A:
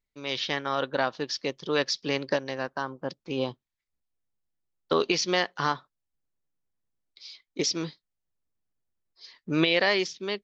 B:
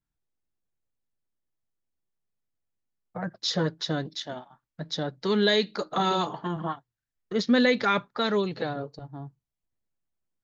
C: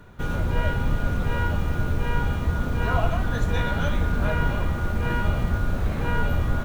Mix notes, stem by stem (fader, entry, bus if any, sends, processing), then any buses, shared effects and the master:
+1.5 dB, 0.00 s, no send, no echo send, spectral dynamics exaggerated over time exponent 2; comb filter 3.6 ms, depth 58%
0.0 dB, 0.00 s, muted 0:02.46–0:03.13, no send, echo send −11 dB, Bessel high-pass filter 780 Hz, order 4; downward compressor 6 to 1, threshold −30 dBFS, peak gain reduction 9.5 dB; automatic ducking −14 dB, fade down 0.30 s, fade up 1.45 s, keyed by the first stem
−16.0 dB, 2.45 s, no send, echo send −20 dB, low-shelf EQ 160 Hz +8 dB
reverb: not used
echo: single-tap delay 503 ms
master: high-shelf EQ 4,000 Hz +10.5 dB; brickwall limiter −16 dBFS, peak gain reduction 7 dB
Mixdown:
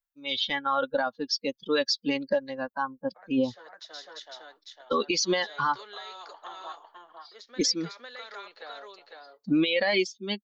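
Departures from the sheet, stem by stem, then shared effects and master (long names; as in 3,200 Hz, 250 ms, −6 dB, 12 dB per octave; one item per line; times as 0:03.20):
stem A +1.5 dB → +8.5 dB
stem C: muted
master: missing high-shelf EQ 4,000 Hz +10.5 dB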